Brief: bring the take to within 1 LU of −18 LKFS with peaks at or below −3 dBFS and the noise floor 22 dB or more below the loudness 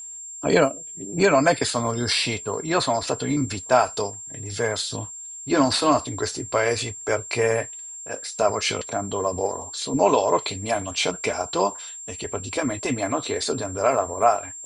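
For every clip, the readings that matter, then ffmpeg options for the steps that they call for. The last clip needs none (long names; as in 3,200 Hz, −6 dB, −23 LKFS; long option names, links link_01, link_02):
interfering tone 7,400 Hz; level of the tone −35 dBFS; integrated loudness −23.5 LKFS; sample peak −4.0 dBFS; target loudness −18.0 LKFS
→ -af "bandreject=frequency=7400:width=30"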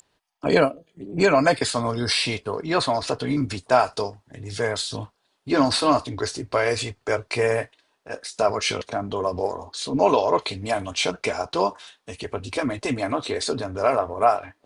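interfering tone none found; integrated loudness −23.5 LKFS; sample peak −4.0 dBFS; target loudness −18.0 LKFS
→ -af "volume=5.5dB,alimiter=limit=-3dB:level=0:latency=1"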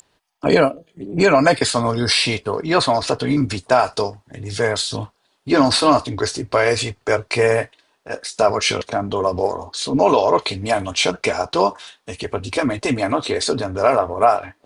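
integrated loudness −18.5 LKFS; sample peak −3.0 dBFS; background noise floor −65 dBFS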